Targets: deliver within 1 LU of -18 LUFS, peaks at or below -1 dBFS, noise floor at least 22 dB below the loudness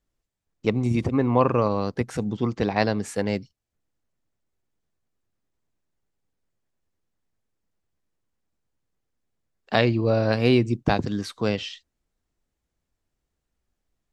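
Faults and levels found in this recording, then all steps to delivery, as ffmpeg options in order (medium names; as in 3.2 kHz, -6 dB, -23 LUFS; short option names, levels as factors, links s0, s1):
loudness -24.0 LUFS; peak level -3.0 dBFS; loudness target -18.0 LUFS
-> -af "volume=2,alimiter=limit=0.891:level=0:latency=1"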